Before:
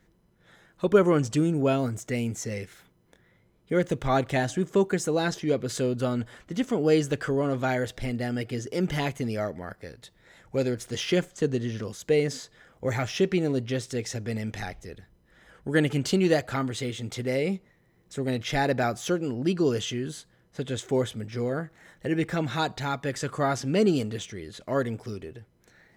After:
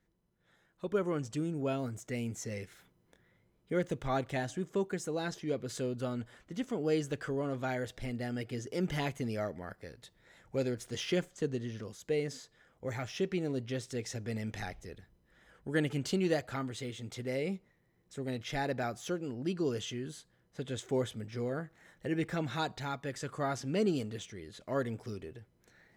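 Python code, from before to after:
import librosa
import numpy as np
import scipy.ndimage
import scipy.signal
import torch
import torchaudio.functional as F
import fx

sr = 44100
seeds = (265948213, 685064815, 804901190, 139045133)

y = fx.rider(x, sr, range_db=4, speed_s=2.0)
y = y * librosa.db_to_amplitude(-9.0)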